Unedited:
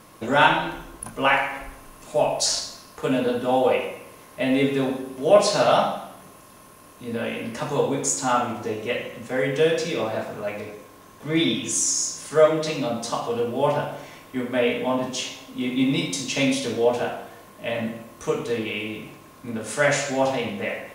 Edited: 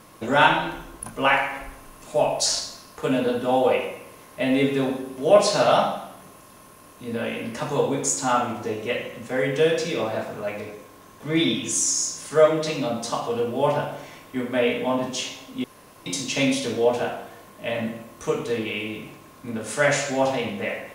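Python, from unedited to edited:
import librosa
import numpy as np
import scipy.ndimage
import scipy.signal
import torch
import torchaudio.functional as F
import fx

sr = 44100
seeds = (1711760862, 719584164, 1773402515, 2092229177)

y = fx.edit(x, sr, fx.room_tone_fill(start_s=15.64, length_s=0.42), tone=tone)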